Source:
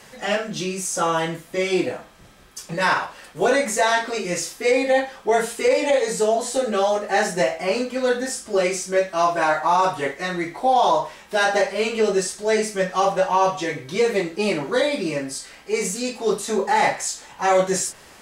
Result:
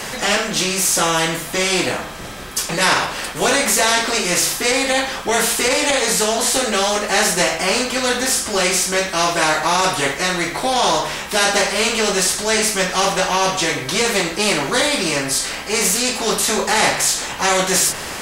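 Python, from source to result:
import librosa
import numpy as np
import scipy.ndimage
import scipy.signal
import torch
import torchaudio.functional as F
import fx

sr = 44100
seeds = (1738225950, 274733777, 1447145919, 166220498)

y = fx.hum_notches(x, sr, base_hz=50, count=3)
y = fx.spectral_comp(y, sr, ratio=2.0)
y = F.gain(torch.from_numpy(y), 4.5).numpy()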